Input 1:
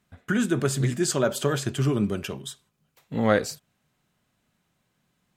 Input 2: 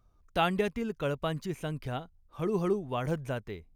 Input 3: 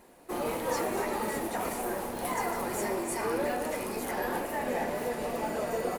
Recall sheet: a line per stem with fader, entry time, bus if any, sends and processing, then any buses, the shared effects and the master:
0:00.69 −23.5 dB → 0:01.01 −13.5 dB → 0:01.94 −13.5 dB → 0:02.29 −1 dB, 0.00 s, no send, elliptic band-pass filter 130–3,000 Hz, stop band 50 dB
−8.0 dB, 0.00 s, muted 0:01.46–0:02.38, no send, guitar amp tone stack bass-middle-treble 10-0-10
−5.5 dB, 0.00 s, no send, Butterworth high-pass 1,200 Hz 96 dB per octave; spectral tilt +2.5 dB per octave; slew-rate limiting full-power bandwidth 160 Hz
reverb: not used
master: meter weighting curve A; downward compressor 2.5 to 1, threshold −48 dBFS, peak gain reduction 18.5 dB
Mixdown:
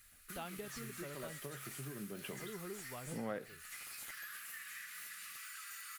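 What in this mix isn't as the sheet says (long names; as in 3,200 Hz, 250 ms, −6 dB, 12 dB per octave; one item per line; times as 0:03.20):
stem 2: missing guitar amp tone stack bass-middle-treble 10-0-10
master: missing meter weighting curve A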